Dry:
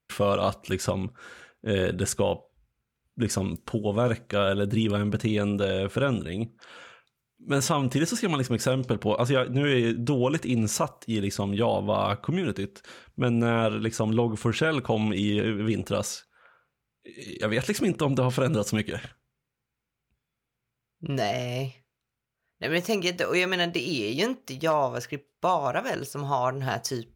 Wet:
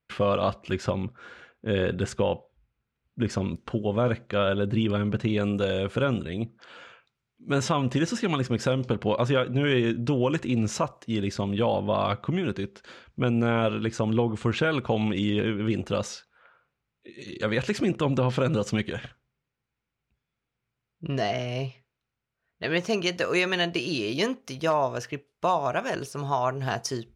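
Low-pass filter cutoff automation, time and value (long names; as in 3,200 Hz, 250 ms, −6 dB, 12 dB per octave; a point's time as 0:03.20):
0:05.25 4,000 Hz
0:05.66 8,900 Hz
0:06.13 5,300 Hz
0:22.75 5,300 Hz
0:23.27 9,200 Hz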